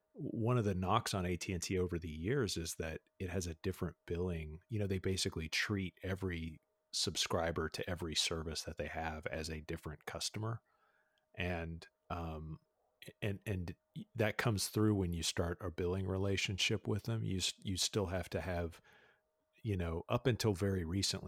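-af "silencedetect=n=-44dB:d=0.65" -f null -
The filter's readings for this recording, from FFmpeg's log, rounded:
silence_start: 10.56
silence_end: 11.37 | silence_duration: 0.81
silence_start: 18.69
silence_end: 19.65 | silence_duration: 0.96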